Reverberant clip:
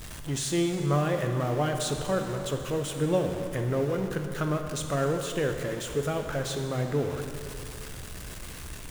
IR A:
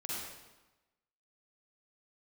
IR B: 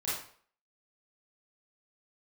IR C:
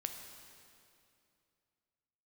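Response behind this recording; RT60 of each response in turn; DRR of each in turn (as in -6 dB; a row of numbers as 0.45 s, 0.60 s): C; 1.1 s, 0.50 s, 2.6 s; -6.5 dB, -10.0 dB, 4.5 dB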